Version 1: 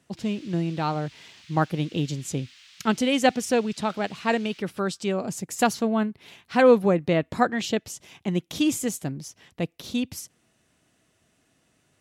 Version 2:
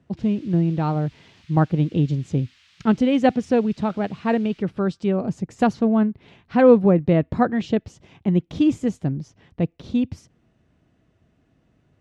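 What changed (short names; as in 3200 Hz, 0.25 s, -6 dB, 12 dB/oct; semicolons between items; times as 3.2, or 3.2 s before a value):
speech: add air absorption 86 m; master: add tilt -3 dB/oct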